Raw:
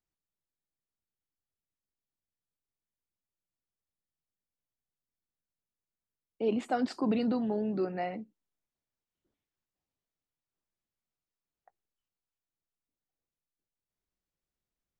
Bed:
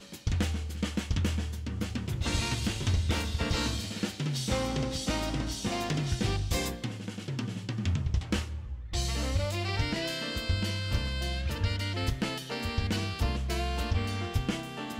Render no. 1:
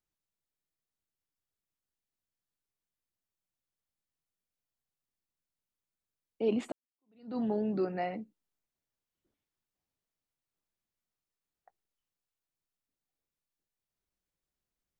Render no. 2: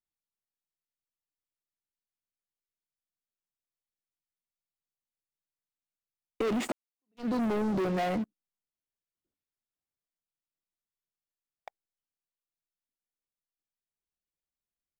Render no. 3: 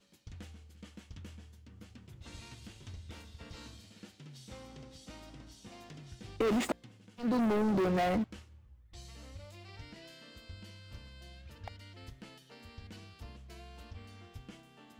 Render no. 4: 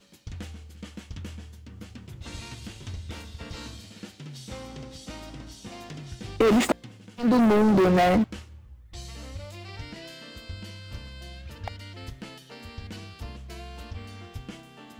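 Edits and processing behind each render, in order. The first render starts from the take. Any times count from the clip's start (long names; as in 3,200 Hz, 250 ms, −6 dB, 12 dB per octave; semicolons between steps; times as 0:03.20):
0:06.72–0:07.39: fade in exponential
leveller curve on the samples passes 5; downward compressor 5 to 1, threshold −29 dBFS, peak gain reduction 8 dB
mix in bed −19.5 dB
level +10 dB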